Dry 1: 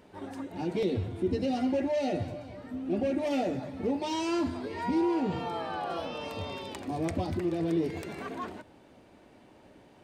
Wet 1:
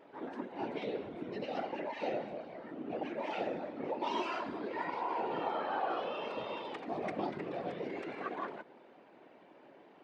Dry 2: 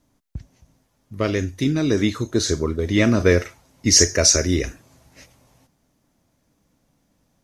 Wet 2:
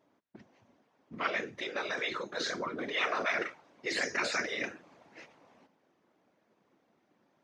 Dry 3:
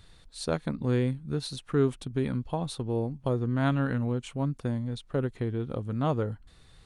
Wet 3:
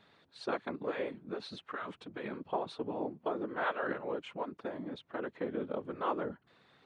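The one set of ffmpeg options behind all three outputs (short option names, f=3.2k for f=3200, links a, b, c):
-af "afftfilt=real='re*lt(hypot(re,im),0.251)':imag='im*lt(hypot(re,im),0.251)':win_size=1024:overlap=0.75,afftfilt=real='hypot(re,im)*cos(2*PI*random(0))':imag='hypot(re,im)*sin(2*PI*random(1))':win_size=512:overlap=0.75,highpass=310,lowpass=2.6k,volume=6dB"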